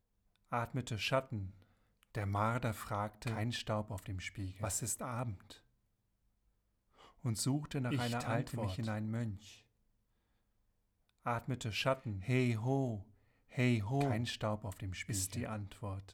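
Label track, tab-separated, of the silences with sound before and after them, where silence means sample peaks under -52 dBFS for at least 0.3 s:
1.620000	2.030000	silence
5.570000	7.010000	silence
9.580000	11.250000	silence
13.030000	13.520000	silence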